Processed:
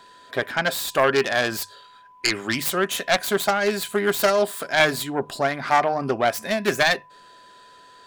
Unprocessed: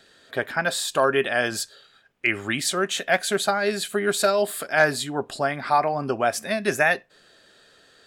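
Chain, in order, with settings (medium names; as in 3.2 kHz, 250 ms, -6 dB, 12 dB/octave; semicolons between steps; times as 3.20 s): self-modulated delay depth 0.17 ms; whistle 1 kHz -50 dBFS; hum notches 50/100/150 Hz; trim +2 dB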